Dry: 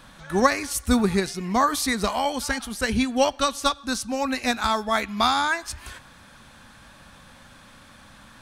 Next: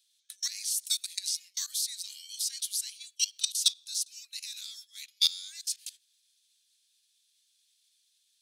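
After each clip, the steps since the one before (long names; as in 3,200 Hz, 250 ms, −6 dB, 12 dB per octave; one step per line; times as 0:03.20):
output level in coarse steps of 19 dB
inverse Chebyshev high-pass filter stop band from 840 Hz, stop band 70 dB
noise gate −55 dBFS, range −13 dB
level +8.5 dB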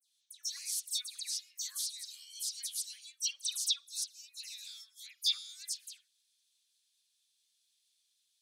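all-pass dispersion lows, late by 138 ms, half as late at 2,600 Hz
level −5.5 dB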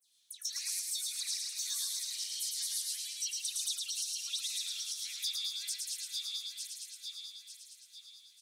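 feedback delay that plays each chunk backwards 448 ms, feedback 60%, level −6 dB
downward compressor, threshold −40 dBFS, peak gain reduction 14 dB
on a send: echo with shifted repeats 110 ms, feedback 45%, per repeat −37 Hz, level −3 dB
on the sum: level +5 dB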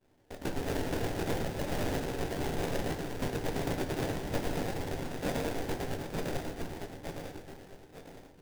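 sample-rate reduction 1,200 Hz, jitter 20%
rectangular room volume 42 cubic metres, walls mixed, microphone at 0.35 metres
level +2 dB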